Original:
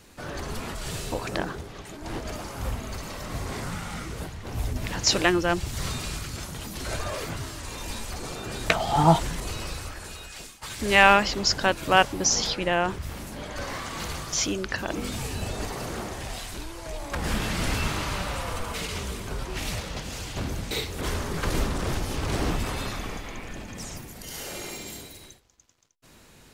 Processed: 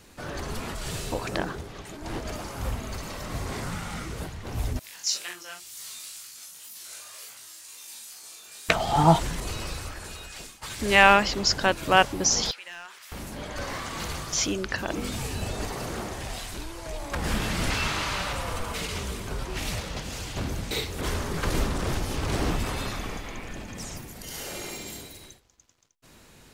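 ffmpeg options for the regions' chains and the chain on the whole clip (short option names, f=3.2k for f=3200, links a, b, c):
-filter_complex "[0:a]asettb=1/sr,asplit=3[a][b][c];[a]atrim=end=4.794[d];[b]atrim=start=4.79:end=8.69,asetpts=PTS-STARTPTS,afade=t=in:d=0.004:c=qsin,afade=t=out:st=3.896:d=0.004:c=qsin,aderivative,asplit=2[e][f];[f]adelay=40,volume=-4dB[g];[e][g]amix=inputs=2:normalize=0,atrim=end_sample=171990,flanger=delay=16.5:depth=5.3:speed=2[h];[c]atrim=start=8.686[i];[d][h]acrossfade=d=0.004:c1=hsin:c2=qsin[j];[j][i]acrossfade=d=0.004:c1=qsin:c2=hsin,asettb=1/sr,asplit=3[k][l][m];[k]atrim=end=12.514[n];[l]atrim=start=12.51:end=13.12,asetpts=PTS-STARTPTS,afade=t=in:d=0.004:c=qsin,afade=t=out:st=0.606:d=0.004:c=qsin,highpass=1.5k,volume=26dB,asoftclip=hard,volume=-26dB,acompressor=threshold=-43dB:ratio=2:attack=3.2:release=140:knee=1:detection=peak[o];[m]atrim=start=13.116[p];[n][o]acrossfade=d=0.004:c1=hsin:c2=qsin[q];[q][p]acrossfade=d=0.004:c1=qsin:c2=hsin,asettb=1/sr,asplit=3[r][s][t];[r]atrim=end=17.704[u];[s]atrim=start=17.7:end=18.33,asetpts=PTS-STARTPTS,afade=t=in:d=0.004:c=qsin,afade=t=out:st=0.626:d=0.004:c=qsin,acrossover=split=6900[v][w];[w]acompressor=threshold=-49dB:ratio=4:attack=1:release=60[x];[v][x]amix=inputs=2:normalize=0,tiltshelf=f=670:g=-4[y];[t]atrim=start=18.326[z];[u][y]acrossfade=d=0.004:c1=hsin:c2=qsin[aa];[aa][z]acrossfade=d=0.004:c1=qsin:c2=hsin"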